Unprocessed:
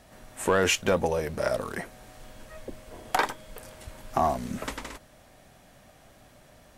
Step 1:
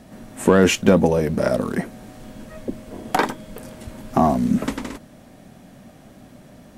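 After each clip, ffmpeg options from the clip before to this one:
ffmpeg -i in.wav -af "equalizer=frequency=220:width_type=o:width=1.7:gain=14,volume=3dB" out.wav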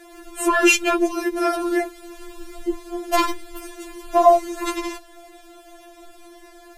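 ffmpeg -i in.wav -filter_complex "[0:a]acrossover=split=570|2600[link_01][link_02][link_03];[link_01]alimiter=limit=-14dB:level=0:latency=1[link_04];[link_04][link_02][link_03]amix=inputs=3:normalize=0,afftfilt=real='re*4*eq(mod(b,16),0)':imag='im*4*eq(mod(b,16),0)':win_size=2048:overlap=0.75,volume=7dB" out.wav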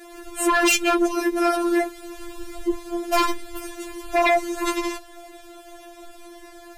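ffmpeg -i in.wav -af "aeval=exprs='0.75*sin(PI/2*3.16*val(0)/0.75)':channel_layout=same,afftfilt=real='hypot(re,im)*cos(PI*b)':imag='0':win_size=512:overlap=0.75,volume=-11.5dB" out.wav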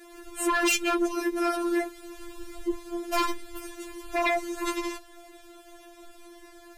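ffmpeg -i in.wav -af "asuperstop=centerf=790:order=4:qfactor=3.7,volume=-5.5dB" out.wav

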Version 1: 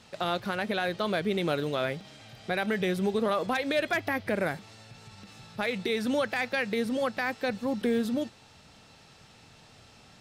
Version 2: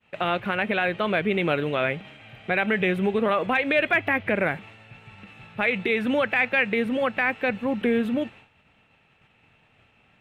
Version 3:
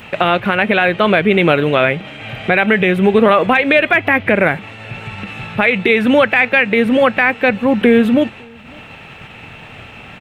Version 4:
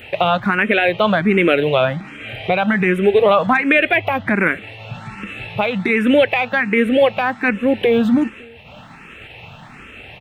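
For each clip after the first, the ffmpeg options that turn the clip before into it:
ffmpeg -i in.wav -af "agate=range=-33dB:threshold=-46dB:ratio=3:detection=peak,highshelf=frequency=3600:width_type=q:width=3:gain=-11.5,volume=4dB" out.wav
ffmpeg -i in.wav -filter_complex "[0:a]asplit=2[link_01][link_02];[link_02]acompressor=mode=upward:threshold=-26dB:ratio=2.5,volume=-3dB[link_03];[link_01][link_03]amix=inputs=2:normalize=0,alimiter=limit=-10dB:level=0:latency=1:release=360,asplit=2[link_04][link_05];[link_05]adelay=553.9,volume=-29dB,highshelf=frequency=4000:gain=-12.5[link_06];[link_04][link_06]amix=inputs=2:normalize=0,volume=8.5dB" out.wav
ffmpeg -i in.wav -filter_complex "[0:a]asplit=2[link_01][link_02];[link_02]afreqshift=1.3[link_03];[link_01][link_03]amix=inputs=2:normalize=1" out.wav

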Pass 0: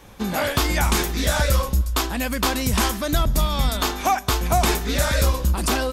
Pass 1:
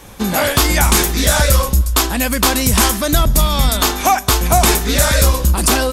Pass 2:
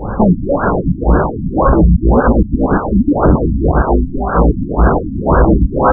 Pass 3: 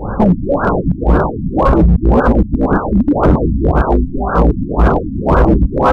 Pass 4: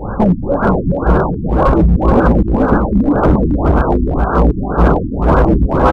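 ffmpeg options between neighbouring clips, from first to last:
ffmpeg -i in.wav -filter_complex "[0:a]equalizer=frequency=10000:width_type=o:width=1.3:gain=6.5,asplit=2[link_01][link_02];[link_02]acontrast=86,volume=-0.5dB[link_03];[link_01][link_03]amix=inputs=2:normalize=0,volume=-3dB" out.wav
ffmpeg -i in.wav -af "aeval=exprs='0.891*sin(PI/2*7.94*val(0)/0.891)':channel_layout=same,afftfilt=real='re*lt(b*sr/1024,290*pow(1700/290,0.5+0.5*sin(2*PI*1.9*pts/sr)))':imag='im*lt(b*sr/1024,290*pow(1700/290,0.5+0.5*sin(2*PI*1.9*pts/sr)))':win_size=1024:overlap=0.75,volume=-2.5dB" out.wav
ffmpeg -i in.wav -af "asoftclip=type=hard:threshold=-5dB" out.wav
ffmpeg -i in.wav -af "aecho=1:1:427:0.596,volume=-1dB" out.wav

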